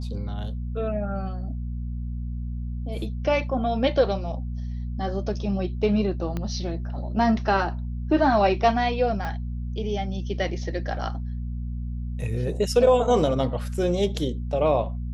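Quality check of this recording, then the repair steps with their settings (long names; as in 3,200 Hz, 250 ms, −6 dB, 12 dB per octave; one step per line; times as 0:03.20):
mains hum 60 Hz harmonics 4 −30 dBFS
0:06.37: click −17 dBFS
0:09.25: click −19 dBFS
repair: click removal
hum removal 60 Hz, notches 4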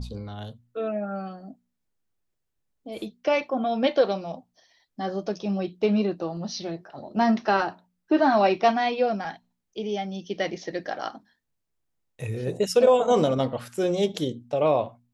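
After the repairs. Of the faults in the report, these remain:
0:06.37: click
0:09.25: click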